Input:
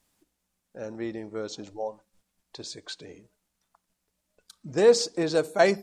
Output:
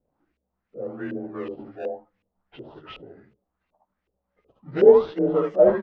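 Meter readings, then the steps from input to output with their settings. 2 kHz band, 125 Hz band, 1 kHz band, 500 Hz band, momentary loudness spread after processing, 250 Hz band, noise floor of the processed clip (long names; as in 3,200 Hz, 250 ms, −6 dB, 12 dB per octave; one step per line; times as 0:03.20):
−7.5 dB, +1.5 dB, 0.0 dB, +5.5 dB, 21 LU, +3.5 dB, −81 dBFS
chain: partials spread apart or drawn together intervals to 90%
ambience of single reflections 59 ms −10 dB, 72 ms −5.5 dB
in parallel at −10 dB: sample-and-hold swept by an LFO 28×, swing 100% 0.7 Hz
on the sum: auto-filter low-pass saw up 2.7 Hz 430–2,600 Hz
level −1 dB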